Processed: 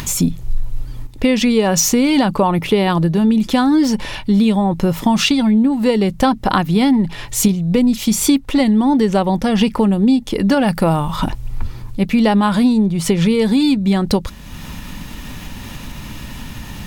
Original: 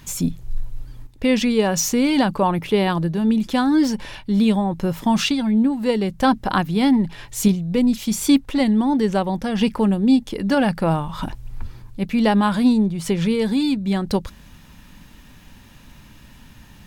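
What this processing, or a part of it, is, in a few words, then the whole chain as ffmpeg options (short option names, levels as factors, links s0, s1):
upward and downward compression: -filter_complex "[0:a]acompressor=mode=upward:threshold=0.0355:ratio=2.5,acompressor=threshold=0.112:ratio=5,bandreject=f=1600:w=14,asettb=1/sr,asplit=3[s0][s1][s2];[s0]atrim=end=10.674[s3];[s1]atrim=start=10.67:end=11.16,asetpts=PTS-STARTPTS,afade=t=in:d=0.004:c=qsin,afade=t=out:st=0.486:d=0.004:c=qsin,highshelf=f=9200:g=11[s4];[s2]atrim=start=11.156[s5];[s3][s4]acrossfade=d=0.004:c1=hsin:c2=qsin[s6];[s6][s5]acrossfade=d=0.004:c1=qsin:c2=hsin,volume=2.66"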